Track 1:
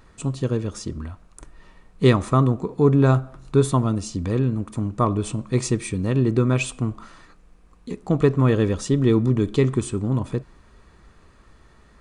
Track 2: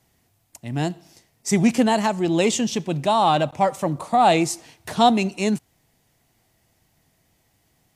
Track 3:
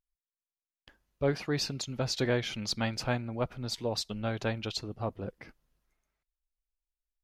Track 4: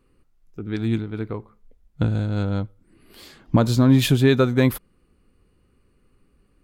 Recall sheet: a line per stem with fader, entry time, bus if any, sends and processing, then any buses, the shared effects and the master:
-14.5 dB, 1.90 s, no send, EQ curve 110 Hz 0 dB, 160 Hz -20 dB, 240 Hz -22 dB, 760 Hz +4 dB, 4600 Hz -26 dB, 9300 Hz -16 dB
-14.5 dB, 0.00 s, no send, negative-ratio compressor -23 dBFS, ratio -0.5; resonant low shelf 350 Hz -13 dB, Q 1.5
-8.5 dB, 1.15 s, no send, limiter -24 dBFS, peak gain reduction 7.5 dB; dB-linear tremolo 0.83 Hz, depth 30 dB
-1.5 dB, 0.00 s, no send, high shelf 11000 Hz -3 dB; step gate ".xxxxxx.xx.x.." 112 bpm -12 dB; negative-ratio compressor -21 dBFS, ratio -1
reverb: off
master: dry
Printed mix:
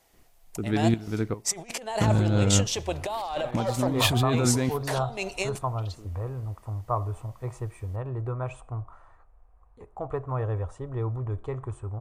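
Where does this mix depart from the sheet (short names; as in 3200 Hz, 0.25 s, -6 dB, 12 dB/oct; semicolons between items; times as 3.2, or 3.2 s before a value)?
stem 1 -14.5 dB -> -4.0 dB; stem 2 -14.5 dB -> -3.5 dB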